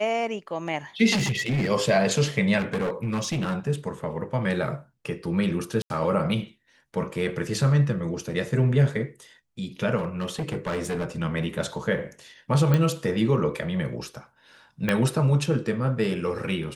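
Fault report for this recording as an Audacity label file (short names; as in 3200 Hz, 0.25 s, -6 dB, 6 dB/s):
1.140000	1.710000	clipped -21 dBFS
2.580000	3.680000	clipped -23 dBFS
5.820000	5.900000	gap 81 ms
9.970000	11.060000	clipped -24 dBFS
12.740000	12.740000	pop -11 dBFS
14.890000	14.890000	pop -10 dBFS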